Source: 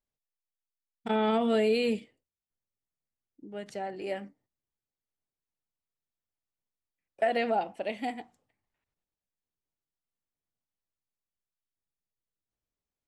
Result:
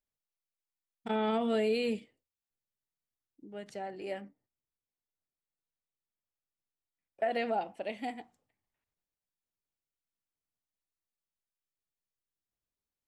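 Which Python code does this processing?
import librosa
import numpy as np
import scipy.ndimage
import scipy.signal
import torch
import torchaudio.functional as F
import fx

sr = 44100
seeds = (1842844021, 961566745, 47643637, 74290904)

y = fx.high_shelf(x, sr, hz=3600.0, db=-10.0, at=(4.21, 7.31))
y = y * 10.0 ** (-4.0 / 20.0)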